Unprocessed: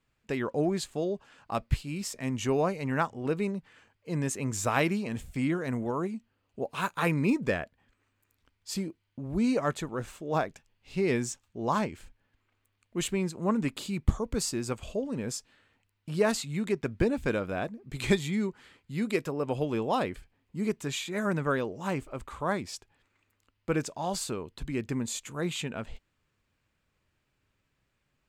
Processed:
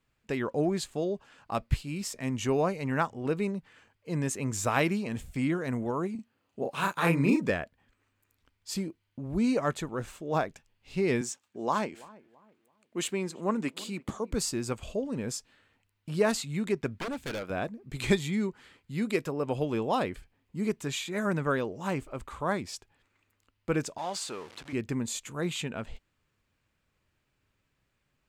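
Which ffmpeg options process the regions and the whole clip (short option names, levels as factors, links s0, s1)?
-filter_complex "[0:a]asettb=1/sr,asplit=3[s0][s1][s2];[s0]atrim=end=6.154[s3];[s1]atrim=start=6.15:end=7.5,asetpts=PTS-STARTPTS,afade=t=in:d=0.004:c=qsin,afade=t=out:st=1.346:d=0.004:c=qsin,highpass=100,asplit=2[s4][s5];[s5]adelay=36,volume=0.708[s6];[s4][s6]amix=inputs=2:normalize=0,atrim=end_sample=59535[s7];[s2]atrim=start=7.496[s8];[s3][s7]acrossfade=d=0.004:c1=hsin:c2=qsin[s9];[s9][s8]acrossfade=d=0.004:c1=qsin:c2=hsin,asettb=1/sr,asplit=3[s10][s11][s12];[s10]atrim=end=11.214[s13];[s11]atrim=start=11.21:end=14.32,asetpts=PTS-STARTPTS,afade=t=in:d=0.004:c=qsin,afade=t=out:st=3.106:d=0.004:c=qsin,highpass=230,equalizer=f=12000:w=6.1:g=-4.5,asplit=2[s14][s15];[s15]adelay=333,lowpass=f=1300:p=1,volume=0.0944,asplit=2[s16][s17];[s17]adelay=333,lowpass=f=1300:p=1,volume=0.35,asplit=2[s18][s19];[s19]adelay=333,lowpass=f=1300:p=1,volume=0.35[s20];[s14][s16][s18][s20]amix=inputs=4:normalize=0,atrim=end_sample=137151[s21];[s12]atrim=start=14.316[s22];[s13][s21]acrossfade=d=0.004:c1=hsin:c2=qsin[s23];[s23][s22]acrossfade=d=0.004:c1=qsin:c2=hsin,asettb=1/sr,asplit=3[s24][s25][s26];[s24]atrim=end=16.984[s27];[s25]atrim=start=16.98:end=17.5,asetpts=PTS-STARTPTS,afade=t=in:d=0.004:c=qsin,afade=t=out:st=0.516:d=0.004:c=qsin,highpass=f=370:p=1,aeval=exprs='0.0355*(abs(mod(val(0)/0.0355+3,4)-2)-1)':c=same[s28];[s26]atrim=start=17.496[s29];[s27][s28]acrossfade=d=0.004:c1=hsin:c2=qsin[s30];[s30][s29]acrossfade=d=0.004:c1=qsin:c2=hsin,asettb=1/sr,asplit=3[s31][s32][s33];[s31]atrim=end=23.984[s34];[s32]atrim=start=23.98:end=24.73,asetpts=PTS-STARTPTS,afade=t=in:d=0.004:c=qsin,afade=t=out:st=0.746:d=0.004:c=qsin,aeval=exprs='val(0)+0.5*0.0112*sgn(val(0))':c=same,highpass=f=730:p=1,adynamicsmooth=sensitivity=2:basefreq=7900[s35];[s33]atrim=start=24.726[s36];[s34][s35]acrossfade=d=0.004:c1=hsin:c2=qsin[s37];[s37][s36]acrossfade=d=0.004:c1=qsin:c2=hsin"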